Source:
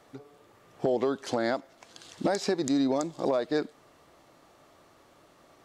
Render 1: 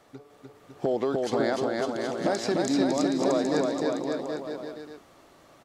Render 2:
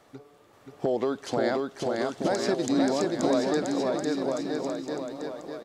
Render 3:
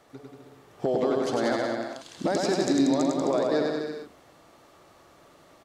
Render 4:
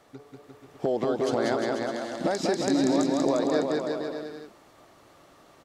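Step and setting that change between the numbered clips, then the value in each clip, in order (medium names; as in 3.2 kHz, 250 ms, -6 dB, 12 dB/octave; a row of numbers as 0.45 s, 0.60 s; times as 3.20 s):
bouncing-ball echo, first gap: 300 ms, 530 ms, 100 ms, 190 ms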